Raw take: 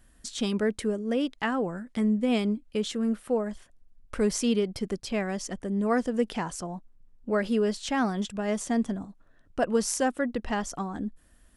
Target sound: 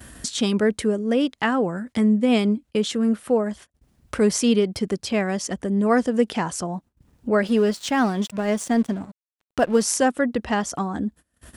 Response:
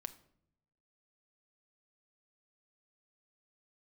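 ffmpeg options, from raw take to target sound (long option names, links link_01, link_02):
-filter_complex "[0:a]acompressor=mode=upward:threshold=-30dB:ratio=2.5,agate=range=-26dB:threshold=-44dB:ratio=16:detection=peak,highpass=frequency=57:width=0.5412,highpass=frequency=57:width=1.3066,asettb=1/sr,asplit=3[link_01][link_02][link_03];[link_01]atrim=end=7.474[link_04];[link_02]atrim=start=7.47:end=9.82,asetpts=PTS-STARTPTS,afade=type=in:duration=0.004:curve=qsin,afade=type=out:start_time=2.346:duration=0.004:curve=qsin,aeval=exprs='sgn(val(0))*max(abs(val(0))-0.00447,0)':channel_layout=same[link_05];[link_03]atrim=start=9.816[link_06];[link_04][link_05]acrossfade=duration=0.004:curve1=hsin:curve2=qsin[link_07];[link_07][link_06]acrossfade=duration=0.004:curve1=qsin:curve2=hsin,volume=6.5dB"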